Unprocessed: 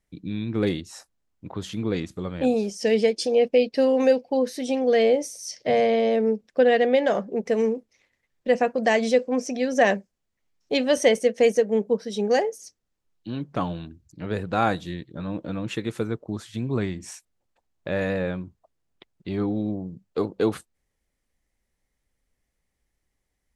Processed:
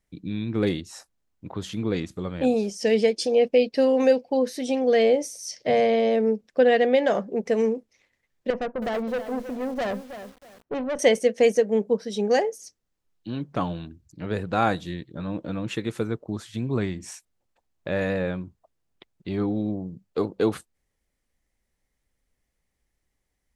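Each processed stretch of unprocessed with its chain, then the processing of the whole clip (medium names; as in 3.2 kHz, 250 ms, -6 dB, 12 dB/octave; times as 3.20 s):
8.50–10.99 s: low-pass 1.3 kHz + valve stage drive 24 dB, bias 0.35 + bit-crushed delay 320 ms, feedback 35%, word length 7-bit, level -10 dB
whole clip: none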